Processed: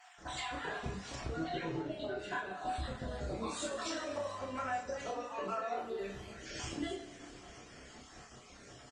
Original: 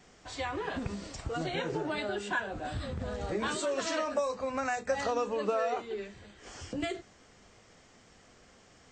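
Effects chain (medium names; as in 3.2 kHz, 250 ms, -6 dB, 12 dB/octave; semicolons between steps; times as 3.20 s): random holes in the spectrogram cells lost 36%; compression 6:1, threshold -43 dBFS, peak gain reduction 16 dB; 1.11–2.30 s: distance through air 100 m; 4.08–4.77 s: mains buzz 100 Hz, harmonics 34, -59 dBFS -4 dB/octave; 5.76–6.30 s: crackle 250 per s -58 dBFS; doubling 31 ms -4.5 dB; two-slope reverb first 0.36 s, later 3.1 s, from -16 dB, DRR 0 dB; trim +2.5 dB; Opus 24 kbps 48 kHz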